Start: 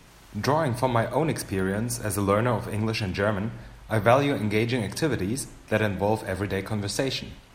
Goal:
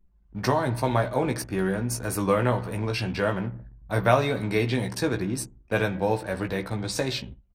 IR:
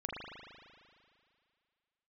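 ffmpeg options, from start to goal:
-filter_complex "[0:a]anlmdn=0.631,asplit=2[s0][s1];[s1]adelay=16,volume=0.501[s2];[s0][s2]amix=inputs=2:normalize=0,volume=0.841"

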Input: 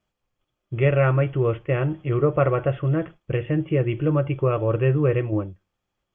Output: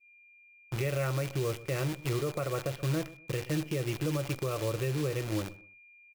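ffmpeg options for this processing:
-filter_complex "[0:a]asetnsamples=n=441:p=0,asendcmd='5.41 equalizer g -6.5',equalizer=f=64:w=6.8:g=-15,acrusher=bits=6:dc=4:mix=0:aa=0.000001,asplit=2[s0][s1];[s1]adelay=125,lowpass=f=1200:p=1,volume=0.1,asplit=2[s2][s3];[s3]adelay=125,lowpass=f=1200:p=1,volume=0.26[s4];[s0][s2][s4]amix=inputs=3:normalize=0,alimiter=limit=0.141:level=0:latency=1:release=200,aeval=exprs='val(0)+0.00316*sin(2*PI*2400*n/s)':c=same,adynamicequalizer=threshold=0.00631:dfrequency=2200:dqfactor=0.7:tfrequency=2200:tqfactor=0.7:attack=5:release=100:ratio=0.375:range=2.5:mode=boostabove:tftype=highshelf,volume=0.501"

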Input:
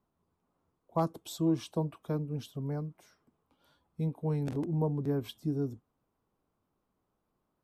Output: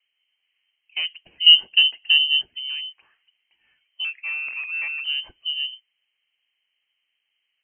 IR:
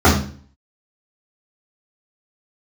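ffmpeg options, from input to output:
-filter_complex "[0:a]asettb=1/sr,asplit=3[s0][s1][s2];[s0]atrim=end=1.464[s3];[s1]atrim=start=1.46:end=2.41,asetpts=PTS-STARTPTS,afade=t=in:d=0.004:c=qsin,afade=t=out:st=0.946:d=0.004:c=qsin,lowshelf=f=600:t=q:w=3:g=9.5[s4];[s2]atrim=start=2.406[s5];[s3][s4]acrossfade=d=0.004:c1=hsin:c2=qsin[s6];[s6][s5]acrossfade=d=0.004:c1=qsin:c2=hsin,asettb=1/sr,asplit=3[s7][s8][s9];[s7]atrim=end=4.044[s10];[s8]atrim=start=4.04:end=5.04,asetpts=PTS-STARTPTS,afade=t=in:d=0.004:c=qsin,afade=t=out:st=0.996:d=0.004:c=qsin,afreqshift=370[s11];[s9]atrim=start=5.036[s12];[s10][s11]acrossfade=d=0.004:c1=hsin:c2=qsin[s13];[s13][s12]acrossfade=d=0.004:c1=qsin:c2=hsin,acrossover=split=520|1800[s14][s15][s16];[s15]asoftclip=type=tanh:threshold=0.0158[s17];[s14][s17][s16]amix=inputs=3:normalize=0,lowpass=f=2700:t=q:w=0.5098,lowpass=f=2700:t=q:w=0.6013,lowpass=f=2700:t=q:w=0.9,lowpass=f=2700:t=q:w=2.563,afreqshift=-3200,volume=1.68"

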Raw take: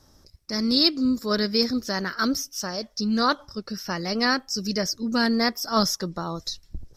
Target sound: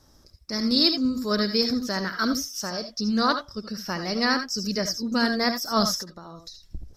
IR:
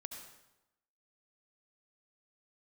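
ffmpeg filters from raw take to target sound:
-filter_complex "[0:a]asettb=1/sr,asplit=3[s0][s1][s2];[s0]atrim=end=5.994[s3];[s1]atrim=start=5.99:end=6.62,asetpts=PTS-STARTPTS,afade=t=in:d=0.004:c=qsin,afade=t=out:st=0.626:d=0.004:c=qsin,acompressor=threshold=0.0112:ratio=5[s4];[s2]atrim=start=6.616[s5];[s3][s4]acrossfade=d=0.004:c1=hsin:c2=qsin[s6];[s6][s5]acrossfade=d=0.004:c1=qsin:c2=hsin[s7];[1:a]atrim=start_sample=2205,atrim=end_sample=3969[s8];[s7][s8]afir=irnorm=-1:irlink=0,volume=1.58"

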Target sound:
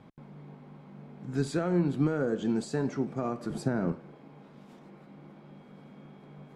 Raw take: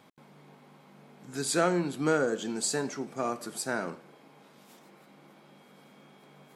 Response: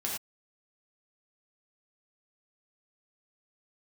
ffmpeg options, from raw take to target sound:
-filter_complex "[0:a]asettb=1/sr,asplit=3[s0][s1][s2];[s0]atrim=end=3.504[s3];[s1]atrim=start=3.5:end=3.92,asetpts=PTS-STARTPTS,afade=t=in:d=0.004:c=qsin,afade=t=out:st=0.416:d=0.004:c=qsin,lowshelf=f=500:g=8.5[s4];[s2]atrim=start=3.916[s5];[s3][s4]acrossfade=d=0.004:c1=hsin:c2=qsin[s6];[s6][s5]acrossfade=d=0.004:c1=qsin:c2=hsin,alimiter=limit=0.075:level=0:latency=1:release=171,aemphasis=mode=reproduction:type=riaa"

